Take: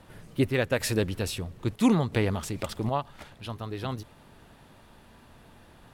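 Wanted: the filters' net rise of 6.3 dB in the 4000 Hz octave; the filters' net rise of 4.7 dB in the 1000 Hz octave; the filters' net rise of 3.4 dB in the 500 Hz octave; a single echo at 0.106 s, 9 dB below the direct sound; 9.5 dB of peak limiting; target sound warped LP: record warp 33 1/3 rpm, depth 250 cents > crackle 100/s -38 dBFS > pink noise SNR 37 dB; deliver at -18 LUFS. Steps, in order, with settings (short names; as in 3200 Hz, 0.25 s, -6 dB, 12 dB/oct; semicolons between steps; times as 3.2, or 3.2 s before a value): bell 500 Hz +3 dB; bell 1000 Hz +4.5 dB; bell 4000 Hz +7.5 dB; limiter -16 dBFS; echo 0.106 s -9 dB; record warp 33 1/3 rpm, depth 250 cents; crackle 100/s -38 dBFS; pink noise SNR 37 dB; gain +11 dB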